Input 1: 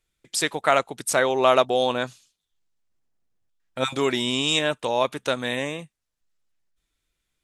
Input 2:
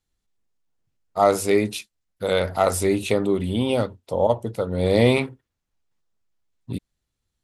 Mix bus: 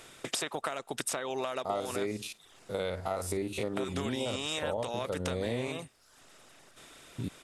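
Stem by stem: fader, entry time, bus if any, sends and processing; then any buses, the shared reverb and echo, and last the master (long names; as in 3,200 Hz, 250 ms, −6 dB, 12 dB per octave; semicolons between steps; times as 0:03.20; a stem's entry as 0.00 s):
+1.5 dB, 0.00 s, no send, compressor on every frequency bin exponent 0.6; reverb reduction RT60 0.56 s; downward compressor 10 to 1, threshold −27 dBFS, peak gain reduction 16 dB
−4.0 dB, 0.50 s, no send, spectrum averaged block by block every 50 ms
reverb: not used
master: downward compressor 6 to 1, threshold −30 dBFS, peak gain reduction 13.5 dB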